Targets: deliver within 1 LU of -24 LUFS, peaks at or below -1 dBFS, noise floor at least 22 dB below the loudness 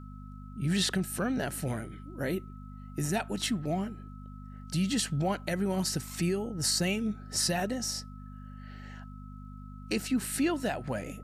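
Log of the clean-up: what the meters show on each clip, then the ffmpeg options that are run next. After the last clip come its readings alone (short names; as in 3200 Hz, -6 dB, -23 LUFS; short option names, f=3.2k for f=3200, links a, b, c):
hum 50 Hz; harmonics up to 250 Hz; hum level -43 dBFS; steady tone 1300 Hz; tone level -54 dBFS; loudness -31.5 LUFS; peak -16.5 dBFS; loudness target -24.0 LUFS
-> -af "bandreject=f=50:t=h:w=4,bandreject=f=100:t=h:w=4,bandreject=f=150:t=h:w=4,bandreject=f=200:t=h:w=4,bandreject=f=250:t=h:w=4"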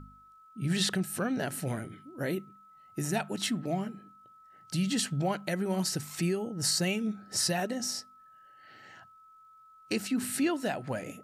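hum none; steady tone 1300 Hz; tone level -54 dBFS
-> -af "bandreject=f=1.3k:w=30"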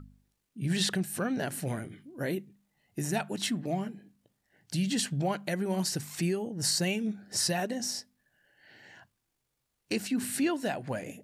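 steady tone none; loudness -31.5 LUFS; peak -16.0 dBFS; loudness target -24.0 LUFS
-> -af "volume=7.5dB"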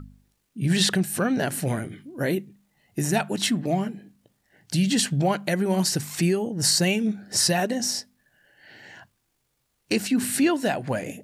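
loudness -24.0 LUFS; peak -8.5 dBFS; noise floor -74 dBFS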